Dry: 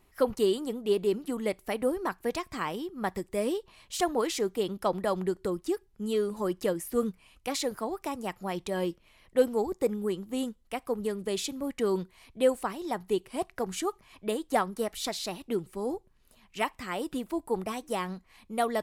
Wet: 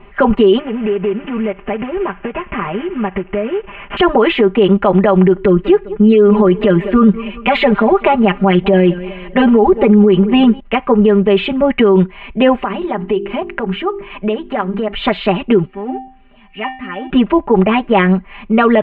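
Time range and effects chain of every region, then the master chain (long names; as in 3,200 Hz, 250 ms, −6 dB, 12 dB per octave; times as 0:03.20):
0:00.59–0:03.97: variable-slope delta modulation 16 kbit/s + downward compressor 8 to 1, threshold −40 dBFS
0:05.37–0:10.60: comb filter 5 ms, depth 68% + feedback echo with a swinging delay time 198 ms, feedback 44%, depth 84 cents, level −23 dB
0:12.63–0:14.94: mains-hum notches 50/100/150/200/250/300/350/400 Hz + downward compressor 4 to 1, threshold −40 dBFS
0:15.65–0:17.10: mu-law and A-law mismatch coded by mu + upward compression, threshold −47 dBFS + tuned comb filter 260 Hz, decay 0.45 s, harmonics odd, mix 90%
whole clip: elliptic low-pass filter 2,900 Hz, stop band 50 dB; comb filter 5 ms, depth 97%; boost into a limiter +23 dB; level −1 dB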